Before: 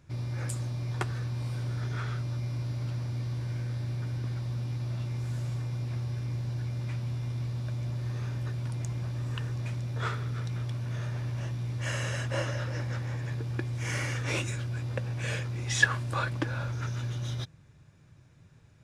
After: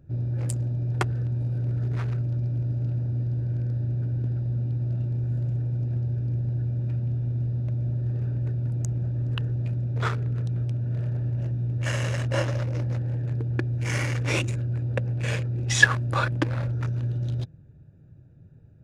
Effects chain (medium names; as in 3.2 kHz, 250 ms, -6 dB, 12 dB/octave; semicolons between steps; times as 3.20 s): local Wiener filter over 41 samples; trim +6.5 dB